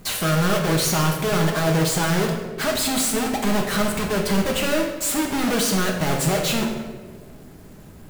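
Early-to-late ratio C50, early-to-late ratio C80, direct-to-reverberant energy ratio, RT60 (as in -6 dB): 4.5 dB, 7.0 dB, 0.0 dB, 1.6 s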